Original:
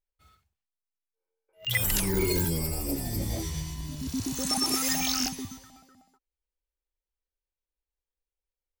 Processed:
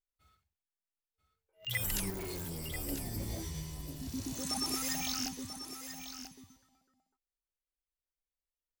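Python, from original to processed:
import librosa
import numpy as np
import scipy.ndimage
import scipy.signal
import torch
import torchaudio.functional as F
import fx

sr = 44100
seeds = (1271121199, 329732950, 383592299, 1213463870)

y = fx.clip_hard(x, sr, threshold_db=-30.5, at=(2.1, 2.75))
y = y + 10.0 ** (-10.0 / 20.0) * np.pad(y, (int(988 * sr / 1000.0), 0))[:len(y)]
y = y * librosa.db_to_amplitude(-8.0)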